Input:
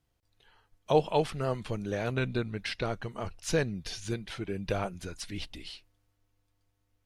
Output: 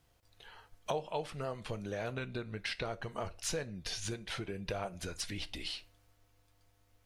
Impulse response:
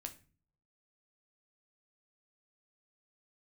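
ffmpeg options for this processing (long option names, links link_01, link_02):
-filter_complex "[0:a]acompressor=threshold=-44dB:ratio=5,asplit=2[link_01][link_02];[link_02]lowshelf=frequency=330:width_type=q:width=1.5:gain=-10.5[link_03];[1:a]atrim=start_sample=2205[link_04];[link_03][link_04]afir=irnorm=-1:irlink=0,volume=1dB[link_05];[link_01][link_05]amix=inputs=2:normalize=0,volume=4dB"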